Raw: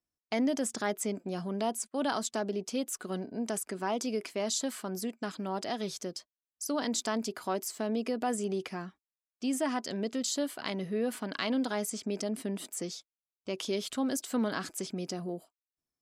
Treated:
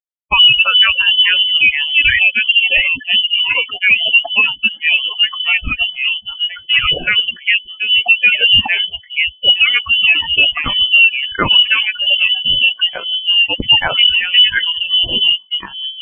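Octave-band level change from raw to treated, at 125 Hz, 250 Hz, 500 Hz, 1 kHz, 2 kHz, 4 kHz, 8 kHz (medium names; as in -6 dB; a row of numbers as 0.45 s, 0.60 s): +9.5 dB, -2.5 dB, +1.0 dB, +11.0 dB, +31.5 dB, +33.5 dB, under -40 dB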